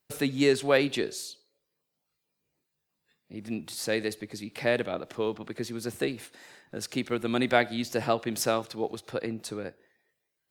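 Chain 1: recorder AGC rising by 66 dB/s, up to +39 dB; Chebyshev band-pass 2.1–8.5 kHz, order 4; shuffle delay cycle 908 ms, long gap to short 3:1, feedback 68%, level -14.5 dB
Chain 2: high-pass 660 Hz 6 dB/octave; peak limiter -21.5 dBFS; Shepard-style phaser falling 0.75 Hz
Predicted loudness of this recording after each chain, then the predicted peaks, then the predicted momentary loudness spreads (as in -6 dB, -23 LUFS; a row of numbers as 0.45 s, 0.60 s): -30.5 LUFS, -38.0 LUFS; -9.0 dBFS, -21.0 dBFS; 14 LU, 11 LU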